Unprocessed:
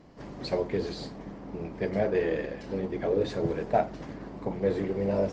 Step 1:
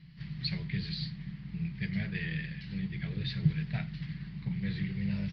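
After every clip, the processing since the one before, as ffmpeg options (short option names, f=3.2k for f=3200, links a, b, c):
-af "firequalizer=gain_entry='entry(100,0);entry(150,13);entry(250,-16);entry(520,-29);entry(1900,3);entry(4500,6);entry(7000,-30)':delay=0.05:min_phase=1,volume=-1dB"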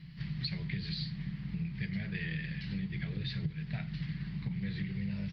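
-af "acompressor=threshold=-37dB:ratio=6,volume=4dB"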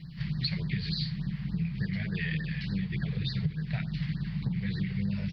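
-af "afftfilt=real='re*(1-between(b*sr/1024,260*pow(2800/260,0.5+0.5*sin(2*PI*3.4*pts/sr))/1.41,260*pow(2800/260,0.5+0.5*sin(2*PI*3.4*pts/sr))*1.41))':imag='im*(1-between(b*sr/1024,260*pow(2800/260,0.5+0.5*sin(2*PI*3.4*pts/sr))/1.41,260*pow(2800/260,0.5+0.5*sin(2*PI*3.4*pts/sr))*1.41))':win_size=1024:overlap=0.75,volume=5.5dB"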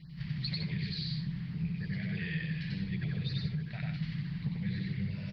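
-af "aecho=1:1:93.29|157.4:0.891|0.447,volume=-6.5dB"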